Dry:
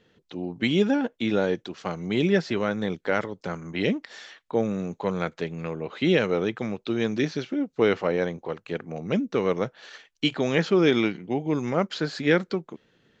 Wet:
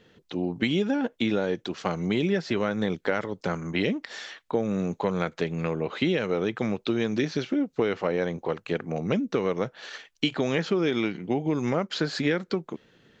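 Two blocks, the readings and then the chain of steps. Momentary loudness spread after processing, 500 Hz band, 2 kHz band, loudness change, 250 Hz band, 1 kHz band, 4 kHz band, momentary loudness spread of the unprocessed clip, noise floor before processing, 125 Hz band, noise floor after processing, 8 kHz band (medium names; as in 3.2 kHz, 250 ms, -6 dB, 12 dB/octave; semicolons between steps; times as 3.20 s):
6 LU, -2.0 dB, -2.0 dB, -1.5 dB, -1.0 dB, -1.0 dB, -1.0 dB, 12 LU, -70 dBFS, -0.5 dB, -66 dBFS, no reading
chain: compression, threshold -26 dBFS, peak gain reduction 11 dB; trim +4.5 dB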